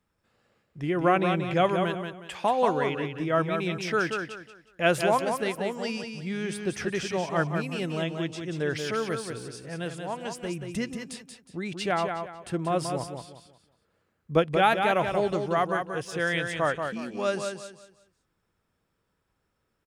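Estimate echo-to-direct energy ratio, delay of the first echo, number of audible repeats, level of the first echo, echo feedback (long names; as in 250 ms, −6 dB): −5.5 dB, 182 ms, 3, −6.0 dB, 30%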